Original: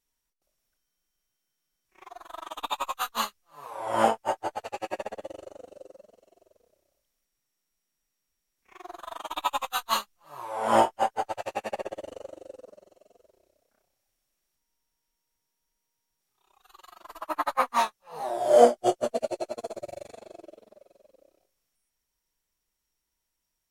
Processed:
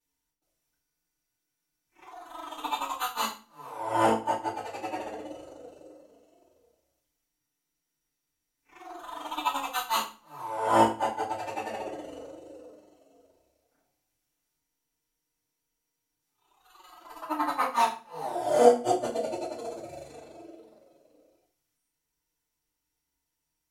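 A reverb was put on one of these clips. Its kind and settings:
feedback delay network reverb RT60 0.35 s, low-frequency decay 1.45×, high-frequency decay 0.95×, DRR −9.5 dB
level −10.5 dB

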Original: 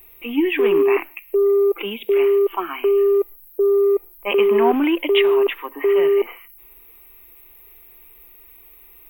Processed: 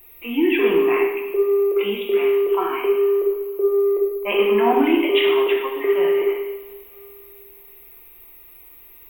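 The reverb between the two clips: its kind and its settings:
coupled-rooms reverb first 0.81 s, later 2.8 s, from −18 dB, DRR −1.5 dB
level −2.5 dB

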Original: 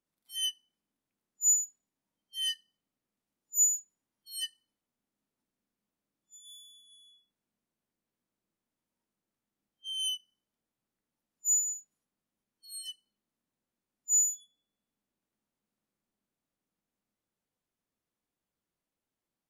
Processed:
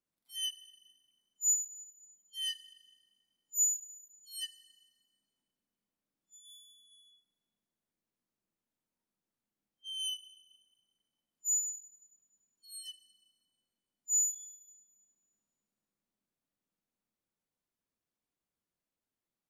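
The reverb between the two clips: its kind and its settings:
four-comb reverb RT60 1.6 s, combs from 31 ms, DRR 16 dB
level −4 dB

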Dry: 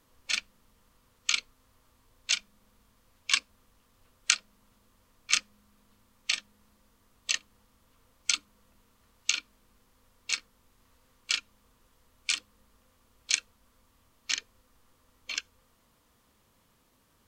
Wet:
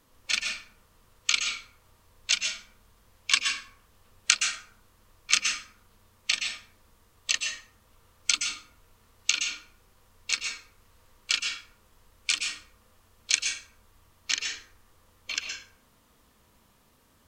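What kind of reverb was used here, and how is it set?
dense smooth reverb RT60 0.57 s, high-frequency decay 0.6×, pre-delay 110 ms, DRR 2.5 dB
level +2.5 dB

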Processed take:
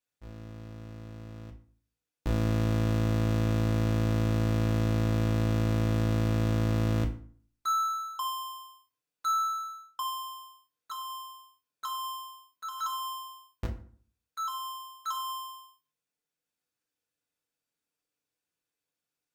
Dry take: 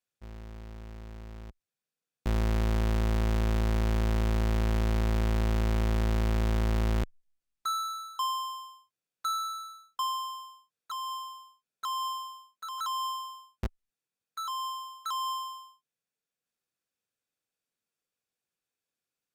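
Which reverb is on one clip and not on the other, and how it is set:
feedback delay network reverb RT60 0.48 s, low-frequency decay 1.2×, high-frequency decay 0.7×, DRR 2 dB
level −1.5 dB

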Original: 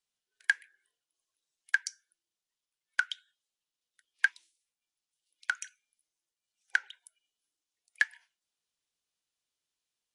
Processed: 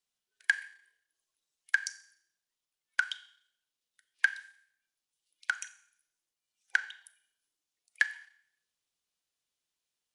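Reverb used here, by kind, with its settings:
four-comb reverb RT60 0.65 s, combs from 29 ms, DRR 13.5 dB

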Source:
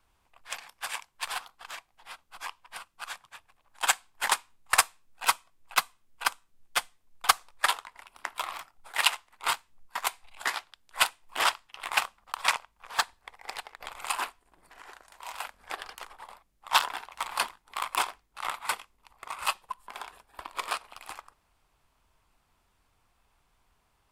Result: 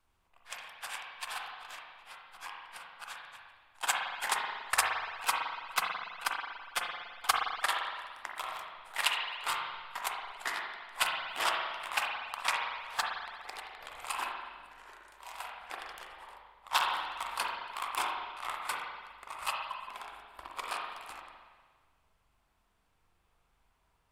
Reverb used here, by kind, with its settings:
spring reverb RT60 1.5 s, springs 40/57 ms, chirp 35 ms, DRR −0.5 dB
level −6.5 dB

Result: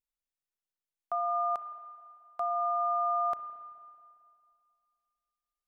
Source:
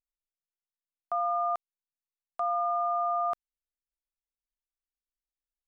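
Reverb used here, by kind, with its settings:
spring reverb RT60 2.3 s, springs 32/55 ms, chirp 75 ms, DRR 11 dB
level −1.5 dB

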